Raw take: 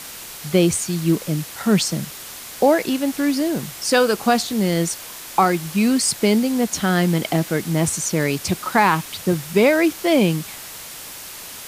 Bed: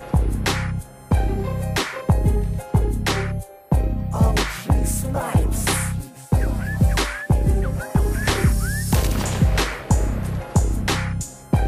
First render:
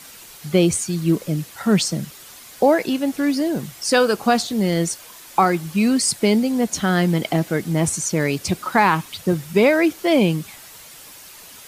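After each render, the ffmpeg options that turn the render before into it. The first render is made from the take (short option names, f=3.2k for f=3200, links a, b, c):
-af "afftdn=nr=8:nf=-36"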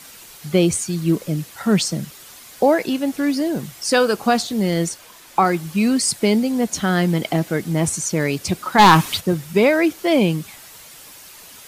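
-filter_complex "[0:a]asettb=1/sr,asplit=3[a][b][c];[a]atrim=end=4.894[d];[b]atrim=start=4.89:end=5.45,asetpts=PTS-STARTPTS,afade=t=in:d=0.004:c=qsin,afade=t=out:st=0.556:d=0.004:c=qsin,highshelf=f=5.3k:g=-5.5[e];[c]atrim=start=5.446[f];[d][e]acrossfade=d=0.004:c1=hsin:c2=qsin[g];[g][f]acrossfade=d=0.004:c1=qsin:c2=hsin,asplit=3[h][i][j];[h]afade=t=out:st=8.78:d=0.02[k];[i]aeval=exprs='0.631*sin(PI/2*2*val(0)/0.631)':c=same,afade=t=in:st=8.78:d=0.02,afade=t=out:st=9.19:d=0.02[l];[j]afade=t=in:st=9.19:d=0.02[m];[k][l][m]amix=inputs=3:normalize=0"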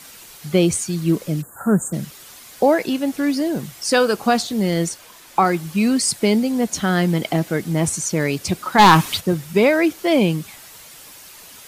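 -filter_complex "[0:a]asplit=3[a][b][c];[a]afade=t=out:st=1.41:d=0.02[d];[b]asuperstop=centerf=3500:order=20:qfactor=0.66,afade=t=in:st=1.41:d=0.02,afade=t=out:st=1.92:d=0.02[e];[c]afade=t=in:st=1.92:d=0.02[f];[d][e][f]amix=inputs=3:normalize=0"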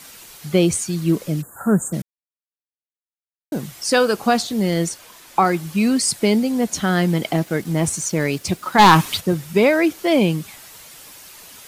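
-filter_complex "[0:a]asettb=1/sr,asplit=3[a][b][c];[a]atrim=end=7.314[d];[b]atrim=start=7.31:end=9.19,asetpts=PTS-STARTPTS,afade=t=in:d=0.004:c=qsin,afade=t=out:st=1.876:d=0.004:c=qsin,aeval=exprs='sgn(val(0))*max(abs(val(0))-0.00422,0)':c=same[e];[c]atrim=start=9.186[f];[d][e]acrossfade=d=0.004:c1=hsin:c2=qsin[g];[g][f]acrossfade=d=0.004:c1=qsin:c2=hsin,asplit=3[h][i][j];[h]atrim=end=2.02,asetpts=PTS-STARTPTS,afade=t=out:st=2.016:d=0.004:c=hsin[k];[i]atrim=start=2.02:end=3.52,asetpts=PTS-STARTPTS,volume=0[l];[j]atrim=start=3.52,asetpts=PTS-STARTPTS,afade=t=in:d=0.004:c=hsin[m];[k][l][m]concat=n=3:v=0:a=1"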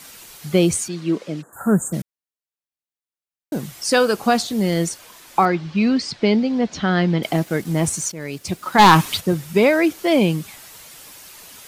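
-filter_complex "[0:a]asettb=1/sr,asplit=3[a][b][c];[a]atrim=end=0.884[d];[b]atrim=start=0.88:end=1.53,asetpts=PTS-STARTPTS,afade=t=in:d=0.004:c=qsin,afade=t=out:st=0.646:d=0.004:c=qsin,highpass=250,lowpass=4.6k[e];[c]atrim=start=1.526[f];[d][e]acrossfade=d=0.004:c1=hsin:c2=qsin[g];[g][f]acrossfade=d=0.004:c1=qsin:c2=hsin,asettb=1/sr,asplit=3[h][i][j];[h]atrim=end=5.454[k];[i]atrim=start=5.45:end=7.23,asetpts=PTS-STARTPTS,afade=t=in:d=0.004:c=qsin,afade=t=out:st=1.776:d=0.004:c=qsin,lowpass=f=4.8k:w=0.5412,lowpass=f=4.8k:w=1.3066[l];[j]atrim=start=7.226[m];[k][l]acrossfade=d=0.004:c1=hsin:c2=qsin[n];[n][m]acrossfade=d=0.004:c1=qsin:c2=hsin,asplit=2[o][p];[o]atrim=end=8.12,asetpts=PTS-STARTPTS,afade=t=out:st=8.116:d=0.004:c=hsin:silence=0.16788[q];[p]atrim=start=8.12,asetpts=PTS-STARTPTS,afade=t=in:d=0.63:silence=0.16788[r];[q][r]concat=n=2:v=0:a=1"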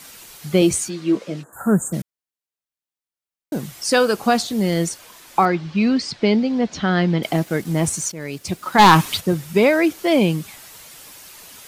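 -filter_complex "[0:a]asettb=1/sr,asplit=3[a][b][c];[a]atrim=end=0.604[d];[b]atrim=start=0.6:end=1.62,asetpts=PTS-STARTPTS,afade=t=in:d=0.004:c=qsin,afade=t=out:st=1.016:d=0.004:c=qsin,asplit=2[e][f];[f]adelay=15,volume=-7dB[g];[e][g]amix=inputs=2:normalize=0,atrim=end_sample=44982[h];[c]atrim=start=1.616[i];[d][h]acrossfade=d=0.004:c1=hsin:c2=qsin[j];[j][i]acrossfade=d=0.004:c1=qsin:c2=hsin"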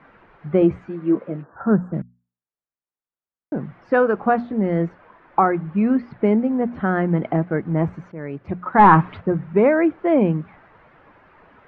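-af "lowpass=f=1.7k:w=0.5412,lowpass=f=1.7k:w=1.3066,bandreject=f=60:t=h:w=6,bandreject=f=120:t=h:w=6,bandreject=f=180:t=h:w=6,bandreject=f=240:t=h:w=6"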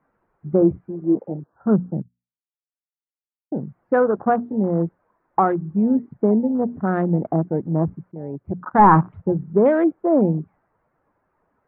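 -af "afwtdn=0.0447,lowpass=1.3k"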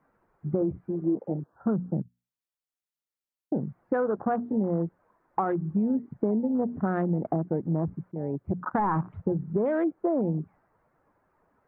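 -af "alimiter=limit=-11.5dB:level=0:latency=1:release=11,acompressor=threshold=-23dB:ratio=6"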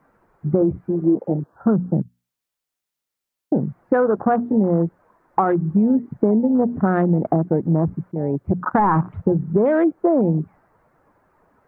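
-af "volume=9dB"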